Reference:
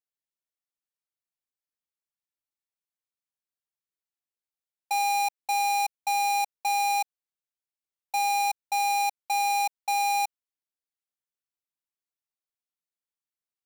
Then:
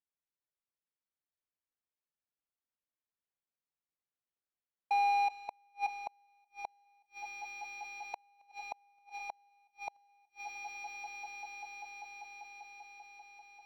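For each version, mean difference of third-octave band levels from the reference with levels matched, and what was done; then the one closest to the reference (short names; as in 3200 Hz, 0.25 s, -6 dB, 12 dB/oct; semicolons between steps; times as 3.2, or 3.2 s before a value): 14.0 dB: air absorption 350 m; swelling echo 0.196 s, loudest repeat 5, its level -13.5 dB; flipped gate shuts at -25 dBFS, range -39 dB; gain -1.5 dB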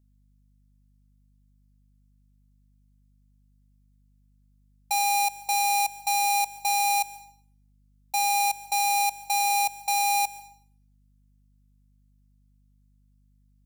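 2.5 dB: tone controls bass -5 dB, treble +7 dB; hum 50 Hz, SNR 33 dB; plate-style reverb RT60 0.54 s, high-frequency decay 1×, pre-delay 0.115 s, DRR 18 dB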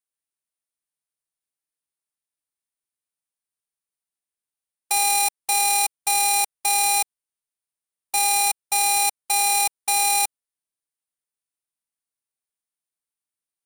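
5.0 dB: spectral whitening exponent 0.6; bell 9400 Hz +13.5 dB 0.24 oct; in parallel at -5 dB: sample gate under -26.5 dBFS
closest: second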